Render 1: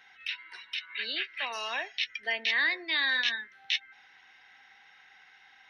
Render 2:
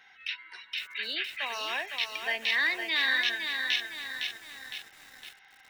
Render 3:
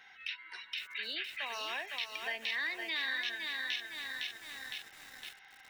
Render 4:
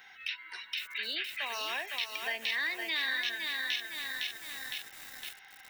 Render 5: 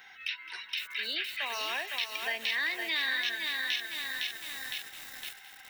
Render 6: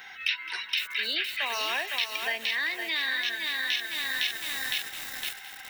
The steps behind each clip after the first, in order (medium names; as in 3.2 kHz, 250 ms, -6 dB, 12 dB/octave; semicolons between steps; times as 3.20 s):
bit-crushed delay 510 ms, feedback 55%, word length 8-bit, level -5 dB
compression 2:1, threshold -40 dBFS, peak gain reduction 9.5 dB
treble shelf 9.8 kHz +11.5 dB; trim +2.5 dB
feedback echo behind a high-pass 213 ms, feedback 49%, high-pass 1.7 kHz, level -13 dB; trim +1.5 dB
gain riding within 3 dB 0.5 s; trim +4.5 dB